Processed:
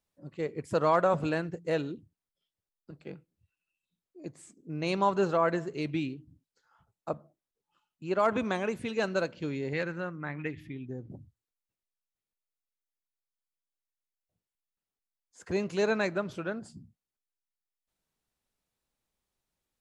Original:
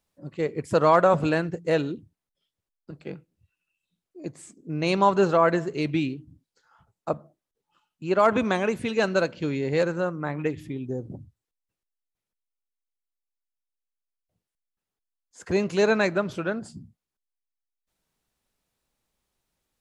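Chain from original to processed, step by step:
0:09.73–0:11.11: octave-band graphic EQ 500/1,000/2,000/8,000 Hz −5/−3/+7/−10 dB
level −6.5 dB

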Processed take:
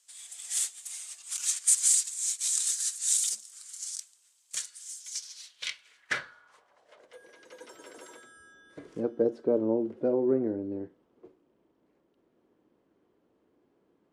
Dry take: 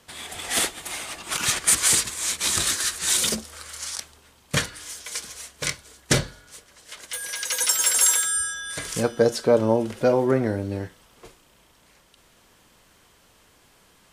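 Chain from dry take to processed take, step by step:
band-pass filter sweep 7,600 Hz → 330 Hz, 0:05.00–0:07.38
level −1 dB

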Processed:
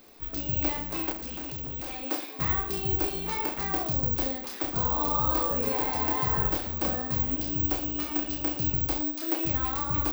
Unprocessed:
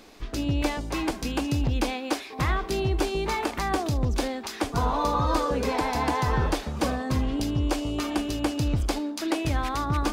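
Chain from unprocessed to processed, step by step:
reverse bouncing-ball delay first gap 30 ms, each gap 1.25×, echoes 5
bad sample-rate conversion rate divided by 2×, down none, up zero stuff
0:01.12–0:02.02: gain into a clipping stage and back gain 24 dB
level −7.5 dB

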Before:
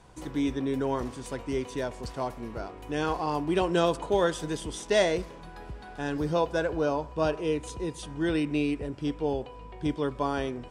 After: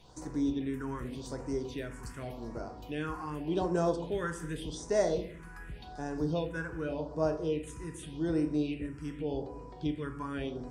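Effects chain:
rectangular room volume 190 cubic metres, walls mixed, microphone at 0.47 metres
all-pass phaser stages 4, 0.86 Hz, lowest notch 590–3,200 Hz
one half of a high-frequency compander encoder only
level −5.5 dB

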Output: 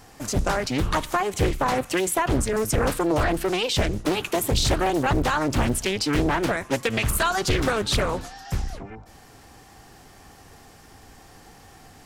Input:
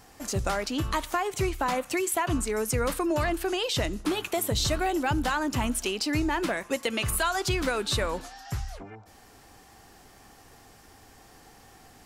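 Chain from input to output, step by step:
sub-octave generator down 1 octave, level −1 dB
highs frequency-modulated by the lows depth 0.96 ms
level +4 dB

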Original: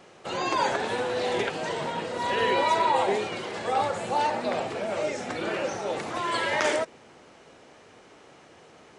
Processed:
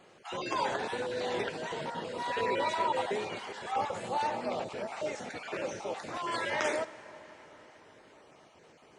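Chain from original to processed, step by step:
time-frequency cells dropped at random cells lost 21%
convolution reverb RT60 5.1 s, pre-delay 5 ms, DRR 15 dB
level −6 dB

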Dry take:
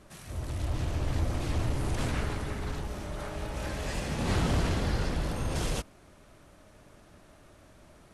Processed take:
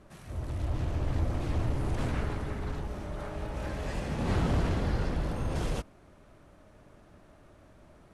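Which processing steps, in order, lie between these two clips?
high-shelf EQ 2,600 Hz −9.5 dB

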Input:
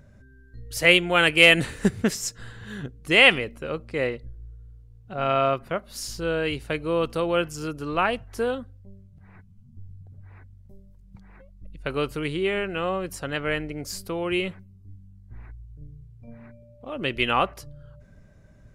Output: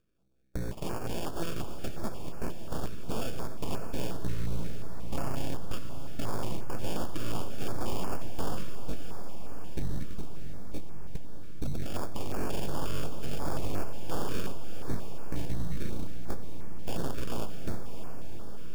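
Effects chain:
ceiling on every frequency bin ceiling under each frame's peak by 22 dB
high-pass filter 53 Hz 6 dB per octave
RIAA equalisation playback
noise gate −32 dBFS, range −37 dB
dynamic equaliser 150 Hz, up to −7 dB, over −36 dBFS, Q 0.86
downward compressor 6 to 1, threshold −35 dBFS, peak gain reduction 21.5 dB
brickwall limiter −29 dBFS, peak gain reduction 10 dB
decimation without filtering 22×
full-wave rectification
feedback delay with all-pass diffusion 639 ms, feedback 68%, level −9.5 dB
on a send at −20.5 dB: convolution reverb RT60 5.5 s, pre-delay 100 ms
on the sum: notch on a step sequencer 5.6 Hz 820–3,500 Hz
level +8.5 dB

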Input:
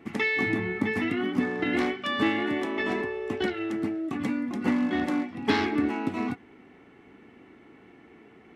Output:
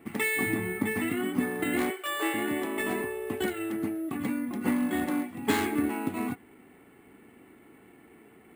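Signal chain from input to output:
0:01.90–0:02.34: elliptic high-pass filter 340 Hz, stop band 40 dB
bad sample-rate conversion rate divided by 4×, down filtered, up hold
level −2 dB

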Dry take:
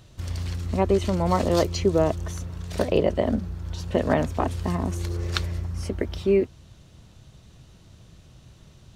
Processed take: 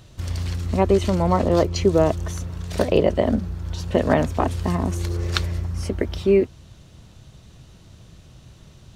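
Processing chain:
0:01.26–0:01.76: high-shelf EQ 2,700 Hz −10.5 dB
level +3.5 dB

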